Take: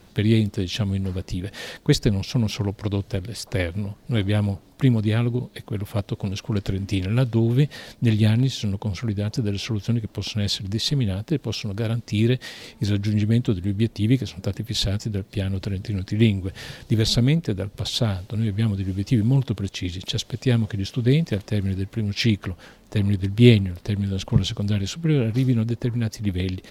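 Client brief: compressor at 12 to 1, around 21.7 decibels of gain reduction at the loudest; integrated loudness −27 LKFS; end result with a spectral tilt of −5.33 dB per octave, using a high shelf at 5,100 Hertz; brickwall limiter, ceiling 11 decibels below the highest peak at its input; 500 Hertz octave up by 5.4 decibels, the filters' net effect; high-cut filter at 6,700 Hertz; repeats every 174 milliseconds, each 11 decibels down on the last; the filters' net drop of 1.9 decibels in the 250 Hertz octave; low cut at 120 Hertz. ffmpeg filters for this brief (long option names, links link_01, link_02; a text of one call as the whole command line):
ffmpeg -i in.wav -af "highpass=120,lowpass=6700,equalizer=frequency=250:width_type=o:gain=-4.5,equalizer=frequency=500:width_type=o:gain=9,highshelf=frequency=5100:gain=-4,acompressor=threshold=-30dB:ratio=12,alimiter=level_in=4.5dB:limit=-24dB:level=0:latency=1,volume=-4.5dB,aecho=1:1:174|348|522:0.282|0.0789|0.0221,volume=11.5dB" out.wav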